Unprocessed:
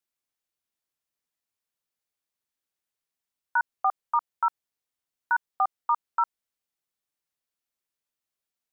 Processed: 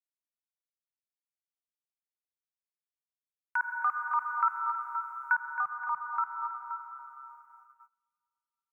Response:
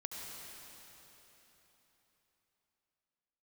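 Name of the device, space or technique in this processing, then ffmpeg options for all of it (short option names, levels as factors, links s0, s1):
ducked reverb: -filter_complex "[0:a]asplit=3[s0][s1][s2];[1:a]atrim=start_sample=2205[s3];[s1][s3]afir=irnorm=-1:irlink=0[s4];[s2]apad=whole_len=384789[s5];[s4][s5]sidechaincompress=threshold=0.0631:ratio=8:attack=16:release=128,volume=1.19[s6];[s0][s6]amix=inputs=2:normalize=0,asplit=3[s7][s8][s9];[s7]afade=t=out:st=3.59:d=0.02[s10];[s8]tiltshelf=f=760:g=-9.5,afade=t=in:st=3.59:d=0.02,afade=t=out:st=5.34:d=0.02[s11];[s9]afade=t=in:st=5.34:d=0.02[s12];[s10][s11][s12]amix=inputs=3:normalize=0,aecho=1:1:269|525:0.335|0.224,agate=range=0.0631:threshold=0.00501:ratio=16:detection=peak,firequalizer=gain_entry='entry(180,0);entry(270,-28);entry(450,-26);entry(650,-30);entry(980,-6);entry(1600,-4);entry(2300,3);entry(3600,-20);entry(5700,-3)':delay=0.05:min_phase=1,volume=0.708"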